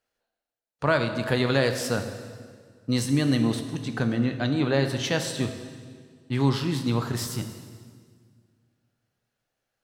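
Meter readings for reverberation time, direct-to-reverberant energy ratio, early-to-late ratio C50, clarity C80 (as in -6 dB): 1.8 s, 6.0 dB, 8.5 dB, 9.5 dB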